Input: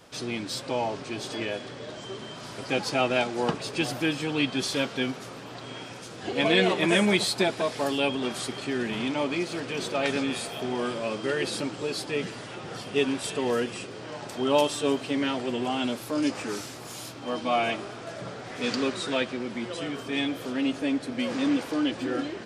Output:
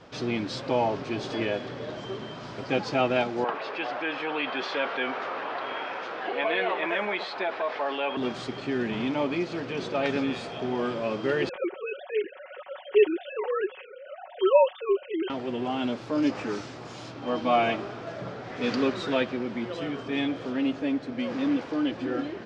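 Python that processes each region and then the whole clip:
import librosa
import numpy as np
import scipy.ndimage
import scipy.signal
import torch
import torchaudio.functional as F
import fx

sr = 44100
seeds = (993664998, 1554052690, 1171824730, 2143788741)

y = fx.chain(x, sr, fx.bandpass_edges(low_hz=700.0, high_hz=2300.0),
    fx.env_flatten(amount_pct=50), at=(3.44, 8.17))
y = fx.chain(y, sr, fx.sine_speech(),
    fx.comb(ms=5.4, depth=0.77), at=(11.49, 15.3))
y = scipy.signal.sosfilt(scipy.signal.butter(4, 6500.0, 'lowpass', fs=sr, output='sos'), y)
y = fx.high_shelf(y, sr, hz=3500.0, db=-11.0)
y = fx.rider(y, sr, range_db=5, speed_s=2.0)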